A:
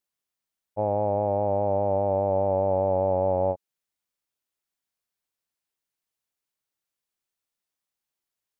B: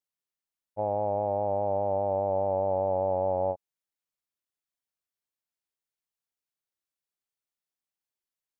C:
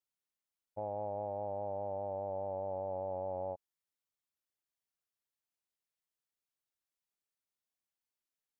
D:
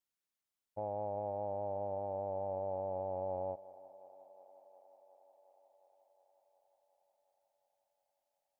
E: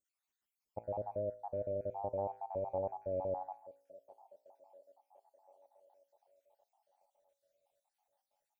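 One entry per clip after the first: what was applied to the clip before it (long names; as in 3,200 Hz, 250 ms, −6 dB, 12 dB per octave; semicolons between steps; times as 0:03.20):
dynamic equaliser 770 Hz, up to +5 dB, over −35 dBFS, Q 1.1; level −7 dB
brickwall limiter −27.5 dBFS, peak gain reduction 9 dB; level −3 dB
feedback echo with a high-pass in the loop 360 ms, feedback 81%, high-pass 260 Hz, level −19 dB
time-frequency cells dropped at random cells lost 61%; tuned comb filter 56 Hz, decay 0.51 s, harmonics all, mix 50%; level +8 dB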